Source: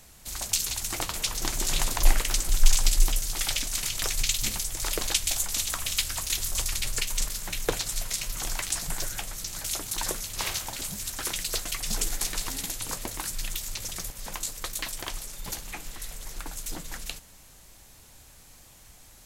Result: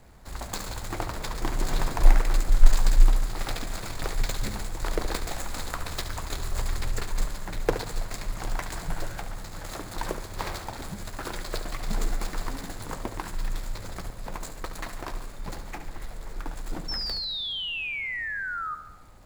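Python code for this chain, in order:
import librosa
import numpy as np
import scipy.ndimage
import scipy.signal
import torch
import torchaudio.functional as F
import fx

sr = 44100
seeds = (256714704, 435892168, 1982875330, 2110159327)

y = scipy.ndimage.median_filter(x, 15, mode='constant')
y = fx.spec_paint(y, sr, seeds[0], shape='fall', start_s=16.88, length_s=1.87, low_hz=1200.0, high_hz=5500.0, level_db=-36.0)
y = fx.echo_feedback(y, sr, ms=71, feedback_pct=58, wet_db=-11.0)
y = F.gain(torch.from_numpy(y), 3.5).numpy()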